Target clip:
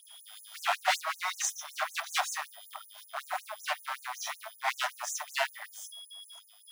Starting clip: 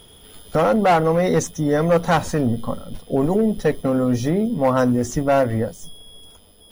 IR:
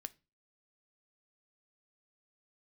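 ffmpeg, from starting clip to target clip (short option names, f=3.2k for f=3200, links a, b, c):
-filter_complex "[0:a]aeval=exprs='0.2*(abs(mod(val(0)/0.2+3,4)-2)-1)':c=same,asplit=2[a][b];[1:a]atrim=start_sample=2205,adelay=28[c];[b][c]afir=irnorm=-1:irlink=0,volume=10dB[d];[a][d]amix=inputs=2:normalize=0,afftfilt=real='re*gte(b*sr/1024,590*pow(6200/590,0.5+0.5*sin(2*PI*5.3*pts/sr)))':imag='im*gte(b*sr/1024,590*pow(6200/590,0.5+0.5*sin(2*PI*5.3*pts/sr)))':win_size=1024:overlap=0.75,volume=-8.5dB"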